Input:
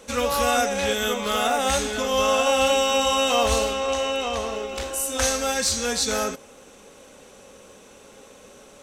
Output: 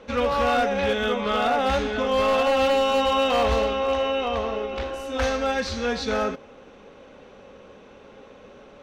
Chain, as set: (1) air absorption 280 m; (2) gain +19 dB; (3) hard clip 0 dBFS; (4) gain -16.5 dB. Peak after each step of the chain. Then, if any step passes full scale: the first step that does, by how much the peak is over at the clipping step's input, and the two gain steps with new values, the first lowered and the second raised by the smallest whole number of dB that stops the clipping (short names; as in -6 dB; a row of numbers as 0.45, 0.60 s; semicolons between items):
-10.0, +9.0, 0.0, -16.5 dBFS; step 2, 9.0 dB; step 2 +10 dB, step 4 -7.5 dB